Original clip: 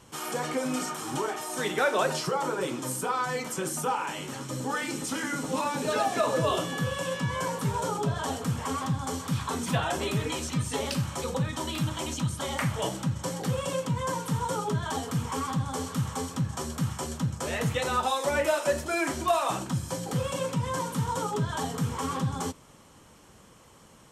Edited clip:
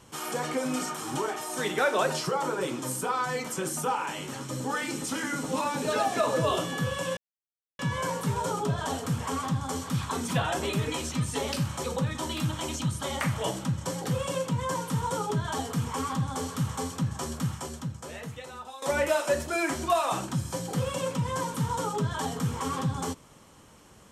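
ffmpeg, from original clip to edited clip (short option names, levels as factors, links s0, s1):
-filter_complex "[0:a]asplit=3[s0][s1][s2];[s0]atrim=end=7.17,asetpts=PTS-STARTPTS,afade=t=out:st=7.166:d=0.004:c=hsin,apad=pad_dur=0.62[s3];[s1]atrim=start=7.17:end=18.2,asetpts=PTS-STARTPTS,afade=t=in:d=0.004:c=hsin,afade=t=out:st=9.58:d=1.45:c=qua:silence=0.158489[s4];[s2]atrim=start=18.2,asetpts=PTS-STARTPTS,afade=t=in:d=0.004:c=hsin:silence=0.158489[s5];[s3][s4][s5]concat=n=3:v=0:a=1"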